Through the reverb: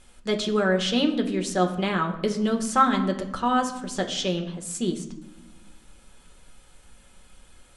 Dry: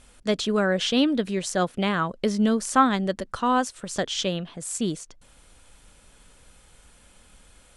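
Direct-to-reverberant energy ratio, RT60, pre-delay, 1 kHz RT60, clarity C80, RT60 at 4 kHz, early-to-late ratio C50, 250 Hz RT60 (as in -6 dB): 3.5 dB, 0.95 s, 5 ms, 0.85 s, 13.0 dB, 0.60 s, 10.5 dB, 1.7 s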